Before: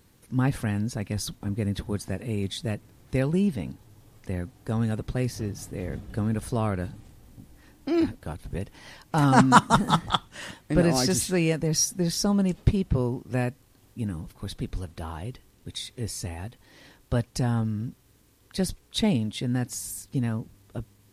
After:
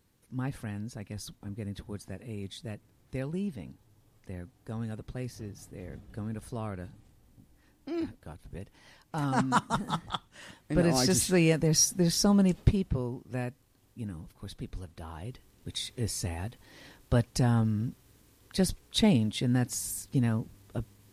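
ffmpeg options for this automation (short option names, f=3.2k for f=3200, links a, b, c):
-af "volume=7.5dB,afade=t=in:st=10.44:d=0.85:silence=0.316228,afade=t=out:st=12.49:d=0.52:silence=0.421697,afade=t=in:st=15.07:d=0.77:silence=0.421697"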